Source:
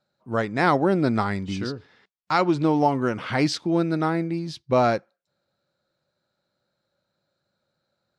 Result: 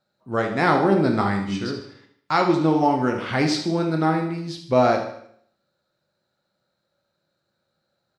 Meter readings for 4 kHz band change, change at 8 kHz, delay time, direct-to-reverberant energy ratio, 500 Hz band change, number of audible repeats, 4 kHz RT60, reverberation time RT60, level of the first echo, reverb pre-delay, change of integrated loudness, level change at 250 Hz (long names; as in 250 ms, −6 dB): +2.0 dB, +1.5 dB, 76 ms, 2.5 dB, +2.0 dB, 4, 0.60 s, 0.65 s, −10.5 dB, 6 ms, +2.0 dB, +1.5 dB